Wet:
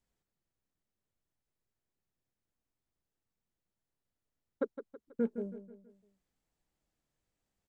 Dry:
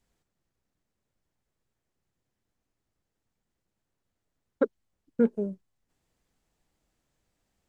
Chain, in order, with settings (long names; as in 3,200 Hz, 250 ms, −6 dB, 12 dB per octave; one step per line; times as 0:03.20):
repeating echo 162 ms, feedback 44%, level −11.5 dB
level −9 dB